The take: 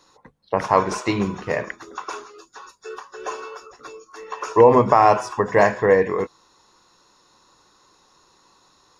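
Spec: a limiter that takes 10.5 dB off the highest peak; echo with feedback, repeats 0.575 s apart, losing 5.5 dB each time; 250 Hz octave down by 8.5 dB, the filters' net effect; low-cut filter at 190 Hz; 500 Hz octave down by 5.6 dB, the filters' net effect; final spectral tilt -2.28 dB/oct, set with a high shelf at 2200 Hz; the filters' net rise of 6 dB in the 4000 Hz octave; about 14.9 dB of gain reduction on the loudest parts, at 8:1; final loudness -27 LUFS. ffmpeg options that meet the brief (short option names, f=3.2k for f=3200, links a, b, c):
-af "highpass=190,equalizer=f=250:t=o:g=-8.5,equalizer=f=500:t=o:g=-4.5,highshelf=f=2.2k:g=3.5,equalizer=f=4k:t=o:g=4.5,acompressor=threshold=-27dB:ratio=8,alimiter=limit=-24dB:level=0:latency=1,aecho=1:1:575|1150|1725|2300|2875|3450|4025:0.531|0.281|0.149|0.079|0.0419|0.0222|0.0118,volume=8.5dB"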